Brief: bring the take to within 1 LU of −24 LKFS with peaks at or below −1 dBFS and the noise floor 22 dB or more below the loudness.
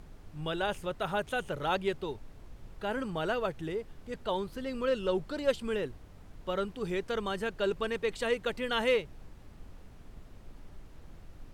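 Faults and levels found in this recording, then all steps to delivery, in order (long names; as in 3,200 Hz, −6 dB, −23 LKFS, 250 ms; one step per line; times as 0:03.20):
background noise floor −52 dBFS; target noise floor −56 dBFS; integrated loudness −33.5 LKFS; sample peak −15.0 dBFS; target loudness −24.0 LKFS
→ noise reduction from a noise print 6 dB
level +9.5 dB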